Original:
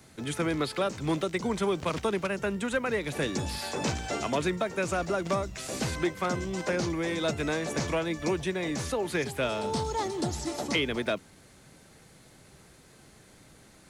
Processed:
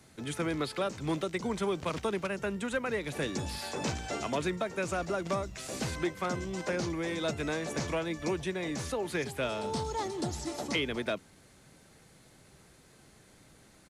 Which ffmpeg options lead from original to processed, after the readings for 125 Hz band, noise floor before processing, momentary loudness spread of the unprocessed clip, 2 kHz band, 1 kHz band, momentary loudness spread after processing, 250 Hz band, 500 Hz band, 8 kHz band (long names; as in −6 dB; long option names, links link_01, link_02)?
−3.5 dB, −56 dBFS, 3 LU, −3.5 dB, −3.5 dB, 3 LU, −3.5 dB, −3.5 dB, −3.5 dB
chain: -af "aresample=32000,aresample=44100,volume=-3.5dB"